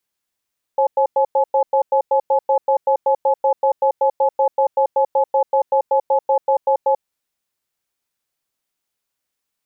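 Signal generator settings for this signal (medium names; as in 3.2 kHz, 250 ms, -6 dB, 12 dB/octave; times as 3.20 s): cadence 540 Hz, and 851 Hz, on 0.09 s, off 0.10 s, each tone -15 dBFS 6.25 s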